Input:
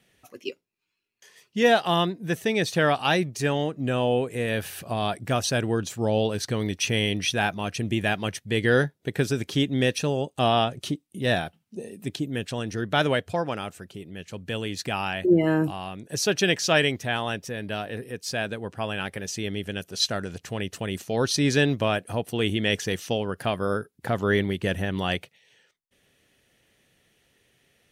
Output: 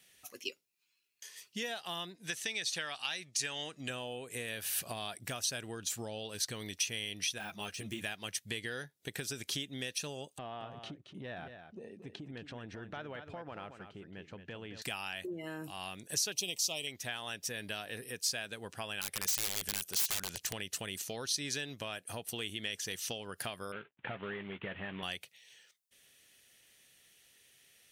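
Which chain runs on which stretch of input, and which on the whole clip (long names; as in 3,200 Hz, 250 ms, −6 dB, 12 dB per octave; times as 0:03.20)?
0:02.15–0:03.90: low-pass filter 7,900 Hz + tilt shelving filter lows −5.5 dB, about 1,100 Hz
0:07.38–0:08.02: de-essing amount 95% + string-ensemble chorus
0:10.38–0:14.82: low-pass filter 1,500 Hz + downward compressor, threshold −32 dBFS + single-tap delay 224 ms −9 dB
0:16.32–0:16.87: Butterworth band-reject 1,600 Hz, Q 1.1 + high-shelf EQ 8,900 Hz +11 dB
0:19.01–0:20.53: high-shelf EQ 4,100 Hz +2.5 dB + wrap-around overflow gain 25.5 dB
0:23.72–0:25.03: variable-slope delta modulation 16 kbit/s + high-pass filter 96 Hz + double-tracking delay 15 ms −11 dB
whole clip: tilt shelving filter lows −3.5 dB, about 730 Hz; downward compressor 12 to 1, threshold −31 dBFS; high-shelf EQ 3,000 Hz +12 dB; level −7.5 dB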